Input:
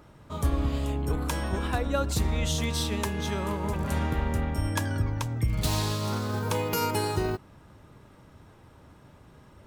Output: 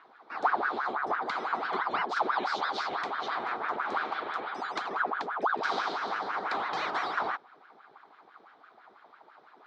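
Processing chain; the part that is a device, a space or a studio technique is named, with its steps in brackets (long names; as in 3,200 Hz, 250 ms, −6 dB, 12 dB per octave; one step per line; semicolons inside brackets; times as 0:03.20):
0:04.02–0:04.89: spectral tilt +1.5 dB per octave
voice changer toy (ring modulator whose carrier an LFO sweeps 930 Hz, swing 70%, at 6 Hz; loudspeaker in its box 400–4,200 Hz, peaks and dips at 550 Hz −8 dB, 780 Hz +5 dB, 1,200 Hz +3 dB, 1,800 Hz −4 dB, 2,700 Hz −9 dB, 3,900 Hz +4 dB)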